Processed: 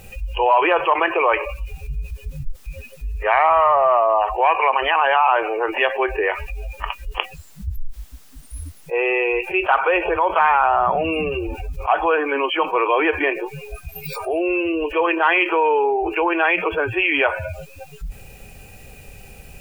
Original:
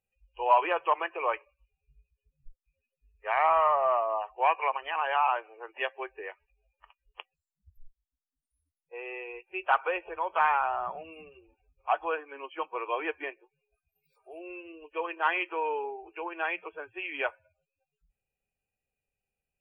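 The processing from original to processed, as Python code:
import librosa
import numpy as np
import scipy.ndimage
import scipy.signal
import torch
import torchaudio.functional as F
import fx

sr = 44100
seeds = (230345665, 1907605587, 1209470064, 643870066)

y = fx.low_shelf(x, sr, hz=250.0, db=7.0)
y = fx.env_flatten(y, sr, amount_pct=70)
y = F.gain(torch.from_numpy(y), 4.0).numpy()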